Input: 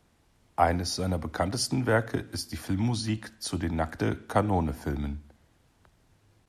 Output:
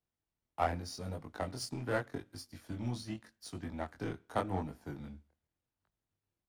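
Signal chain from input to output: power-law curve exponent 1.4; chorus 0.84 Hz, delay 19.5 ms, depth 5.5 ms; gain -3 dB

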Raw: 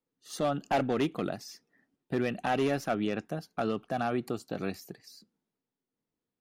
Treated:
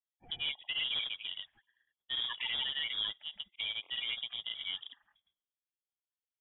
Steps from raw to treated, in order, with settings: bin magnitudes rounded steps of 30 dB; low shelf 400 Hz -4.5 dB; limiter -24.5 dBFS, peak gain reduction 5 dB; grains 0.1 s, grains 26/s, spray 87 ms, pitch spread up and down by 0 st; inverted band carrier 3600 Hz; low-pass opened by the level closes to 1300 Hz, open at -41.5 dBFS

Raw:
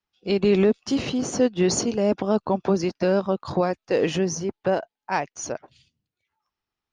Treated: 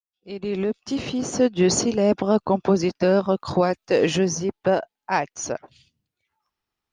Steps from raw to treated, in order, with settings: opening faded in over 1.67 s; 3.28–4.28 high shelf 4500 Hz +5.5 dB; gain +2.5 dB

